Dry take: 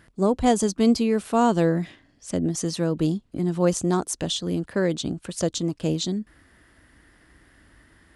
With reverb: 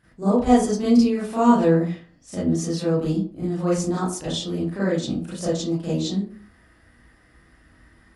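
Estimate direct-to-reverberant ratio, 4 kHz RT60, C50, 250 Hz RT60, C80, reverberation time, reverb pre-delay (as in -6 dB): -11.0 dB, 0.25 s, 1.0 dB, 0.45 s, 8.0 dB, 0.45 s, 32 ms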